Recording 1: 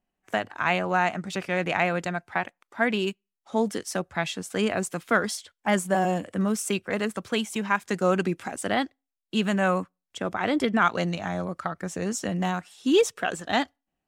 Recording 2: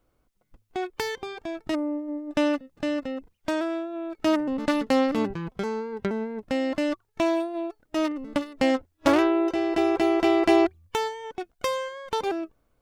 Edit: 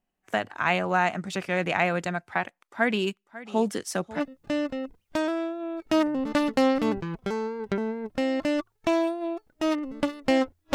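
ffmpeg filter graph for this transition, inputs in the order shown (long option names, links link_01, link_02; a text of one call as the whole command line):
ffmpeg -i cue0.wav -i cue1.wav -filter_complex "[0:a]asettb=1/sr,asplit=3[link_01][link_02][link_03];[link_01]atrim=end=2.534[link_04];[link_02]atrim=start=2.53:end=4.21,asetpts=PTS-STARTPTS,afade=type=in:duration=0.004:curve=qsin,afade=type=out:start_time=1.676:duration=0.004:curve=qsin,aecho=1:1:546:0.141,atrim=end_sample=74088[link_05];[link_03]atrim=start=4.206[link_06];[link_04][link_05]acrossfade=duration=0.004:curve1=hsin:curve2=qsin[link_07];[link_07][link_06]acrossfade=duration=0.004:curve1=qsin:curve2=hsin,apad=whole_dur=10.74,atrim=end=10.74,atrim=end=4.21,asetpts=PTS-STARTPTS[link_08];[1:a]atrim=start=2.48:end=9.07,asetpts=PTS-STARTPTS[link_09];[link_08][link_09]acrossfade=duration=0.06:curve1=tri:curve2=tri" out.wav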